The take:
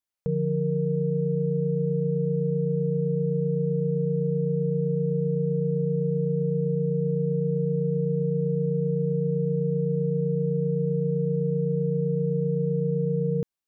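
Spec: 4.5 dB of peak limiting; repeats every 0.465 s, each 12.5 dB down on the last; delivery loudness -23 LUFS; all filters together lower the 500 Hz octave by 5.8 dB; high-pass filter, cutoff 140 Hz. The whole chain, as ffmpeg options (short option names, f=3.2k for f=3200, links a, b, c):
-af "highpass=140,equalizer=f=500:t=o:g=-6,alimiter=level_in=1dB:limit=-24dB:level=0:latency=1,volume=-1dB,aecho=1:1:465|930|1395:0.237|0.0569|0.0137,volume=9dB"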